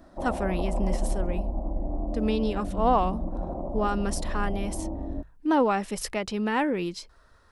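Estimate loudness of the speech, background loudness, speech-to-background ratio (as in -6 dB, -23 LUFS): -28.5 LUFS, -33.5 LUFS, 5.0 dB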